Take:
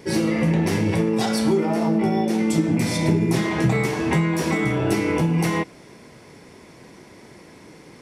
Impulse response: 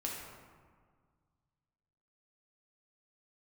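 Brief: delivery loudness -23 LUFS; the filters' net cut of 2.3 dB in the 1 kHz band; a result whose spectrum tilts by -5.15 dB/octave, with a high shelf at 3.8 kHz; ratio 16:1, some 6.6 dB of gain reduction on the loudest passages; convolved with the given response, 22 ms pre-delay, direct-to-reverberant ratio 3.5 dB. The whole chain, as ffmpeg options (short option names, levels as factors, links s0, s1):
-filter_complex "[0:a]equalizer=f=1000:t=o:g=-3.5,highshelf=f=3800:g=8,acompressor=threshold=0.0891:ratio=16,asplit=2[s0][s1];[1:a]atrim=start_sample=2205,adelay=22[s2];[s1][s2]afir=irnorm=-1:irlink=0,volume=0.562[s3];[s0][s3]amix=inputs=2:normalize=0,volume=1.06"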